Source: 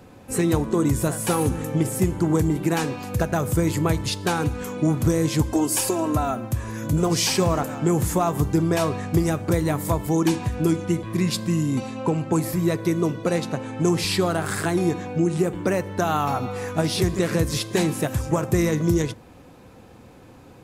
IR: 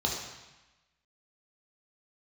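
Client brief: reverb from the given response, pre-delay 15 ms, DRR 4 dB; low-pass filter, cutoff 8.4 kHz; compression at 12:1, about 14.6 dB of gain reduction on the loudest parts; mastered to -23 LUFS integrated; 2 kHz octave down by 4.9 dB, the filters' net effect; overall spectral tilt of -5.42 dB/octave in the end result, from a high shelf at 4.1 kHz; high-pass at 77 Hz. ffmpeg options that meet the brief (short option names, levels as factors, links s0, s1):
-filter_complex "[0:a]highpass=77,lowpass=8400,equalizer=f=2000:t=o:g=-8,highshelf=f=4100:g=6,acompressor=threshold=0.0282:ratio=12,asplit=2[s0][s1];[1:a]atrim=start_sample=2205,adelay=15[s2];[s1][s2]afir=irnorm=-1:irlink=0,volume=0.251[s3];[s0][s3]amix=inputs=2:normalize=0,volume=3.16"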